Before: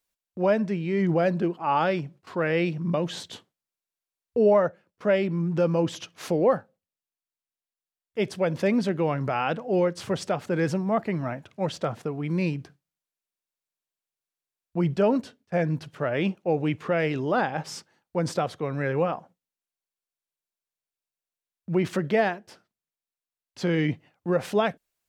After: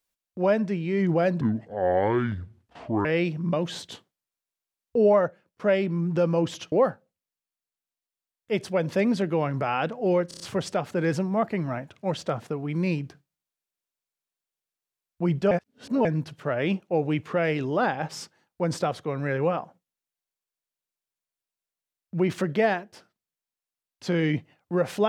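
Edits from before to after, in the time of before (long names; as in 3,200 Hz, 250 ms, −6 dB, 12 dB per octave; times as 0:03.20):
0:01.41–0:02.46: play speed 64%
0:06.13–0:06.39: remove
0:09.95: stutter 0.03 s, 5 plays
0:15.06–0:15.60: reverse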